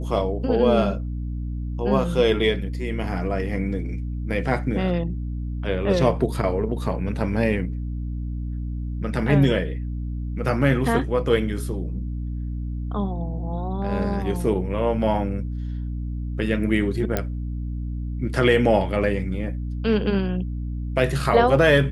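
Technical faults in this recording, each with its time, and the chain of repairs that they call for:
hum 60 Hz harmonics 5 -28 dBFS
17.17 pop -8 dBFS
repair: de-click; de-hum 60 Hz, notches 5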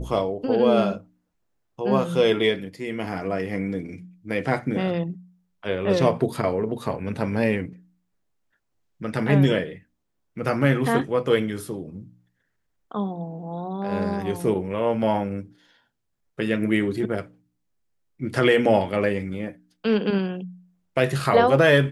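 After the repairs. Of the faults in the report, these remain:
none

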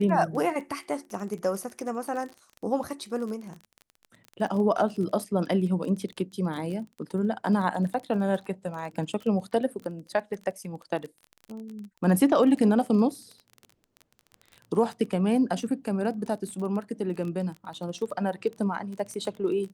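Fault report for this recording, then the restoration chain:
crackle 21/s -34 dBFS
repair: de-click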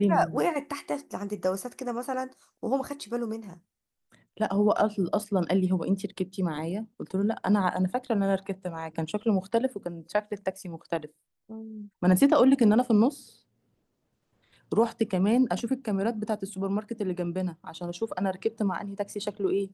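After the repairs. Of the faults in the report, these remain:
none

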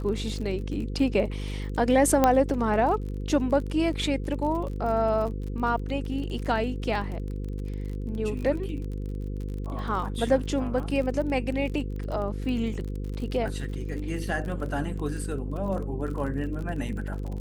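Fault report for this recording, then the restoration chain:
buzz 50 Hz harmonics 10 -32 dBFS
crackle 32/s -34 dBFS
2.24 pop -7 dBFS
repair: de-click; de-hum 50 Hz, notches 10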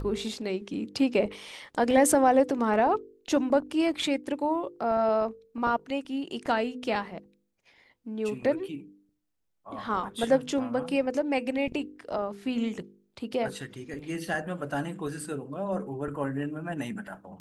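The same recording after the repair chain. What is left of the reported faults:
none

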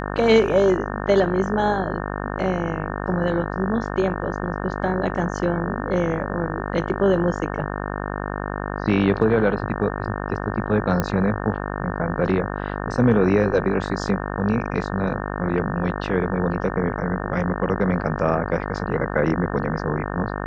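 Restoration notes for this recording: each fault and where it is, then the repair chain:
buzz 50 Hz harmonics 36 -28 dBFS
11 pop -8 dBFS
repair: de-click; de-hum 50 Hz, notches 36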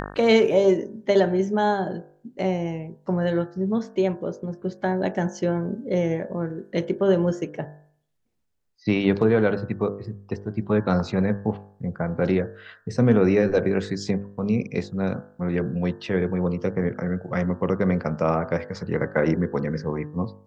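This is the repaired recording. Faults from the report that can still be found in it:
none

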